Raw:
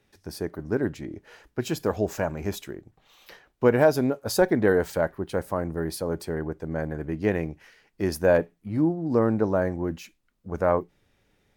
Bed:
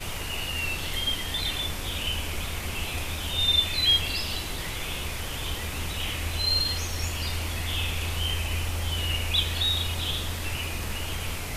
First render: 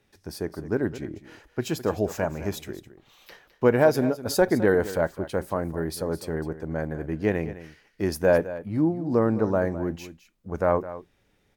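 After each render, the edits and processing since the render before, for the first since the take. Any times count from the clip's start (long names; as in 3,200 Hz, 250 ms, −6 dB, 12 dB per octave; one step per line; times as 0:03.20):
single-tap delay 210 ms −14.5 dB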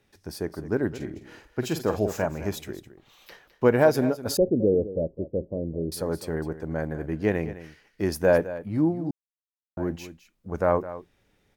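0:00.94–0:02.26: double-tracking delay 48 ms −9.5 dB
0:04.37–0:05.92: elliptic low-pass filter 550 Hz, stop band 70 dB
0:09.11–0:09.77: silence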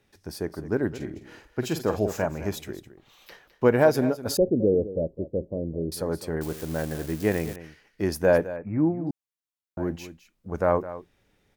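0:06.41–0:07.56: spike at every zero crossing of −27 dBFS
0:08.56–0:09.07: linear-phase brick-wall low-pass 2,700 Hz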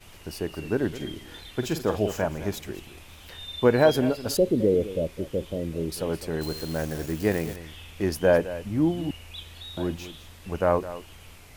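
mix in bed −16 dB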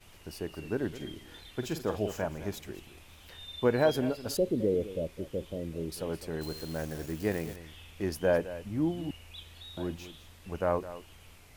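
level −6.5 dB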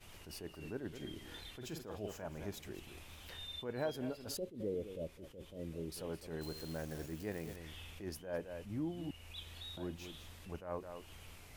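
downward compressor 2 to 1, threshold −44 dBFS, peak gain reduction 13 dB
level that may rise only so fast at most 130 dB per second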